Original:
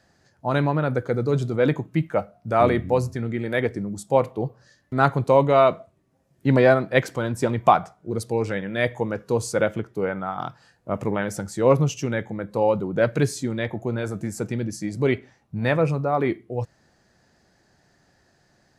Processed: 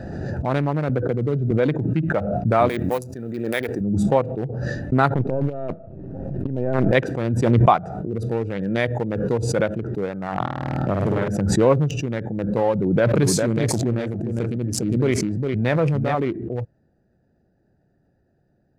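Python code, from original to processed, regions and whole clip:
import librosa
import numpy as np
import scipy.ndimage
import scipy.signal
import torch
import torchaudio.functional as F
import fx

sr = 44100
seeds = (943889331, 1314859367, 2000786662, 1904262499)

y = fx.chain(x, sr, fx.lowpass(hz=2000.0, slope=6),
    fx.band_squash(depth_pct=70), at=(0.89, 1.51))
y = fx.chain(y, sr, fx.law_mismatch(coded='A'),
    fx.riaa(side='recording'), at=(2.69, 3.81))
y = fx.chain(y, sr, fx.halfwave_gain(db=-7.0),
    fx.over_compress(threshold_db=-24.0, ratio=-0.5),
    fx.lowpass(hz=1700.0, slope=6), at=(5.14, 6.92))
y = fx.chain(y, sr, fx.peak_eq(hz=110.0, db=5.5, octaves=1.6),
    fx.room_flutter(wall_m=8.9, rt60_s=1.3),
    fx.band_squash(depth_pct=70), at=(10.4, 11.28))
y = fx.chain(y, sr, fx.echo_single(ms=405, db=-4.0),
    fx.sustainer(db_per_s=27.0), at=(12.73, 16.15))
y = fx.wiener(y, sr, points=41)
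y = fx.pre_swell(y, sr, db_per_s=26.0)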